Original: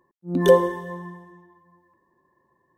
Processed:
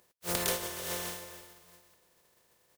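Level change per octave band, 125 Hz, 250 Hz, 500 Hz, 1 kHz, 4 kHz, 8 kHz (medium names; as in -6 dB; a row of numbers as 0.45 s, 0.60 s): -15.5 dB, -17.5 dB, -20.0 dB, -13.0 dB, +2.0 dB, no reading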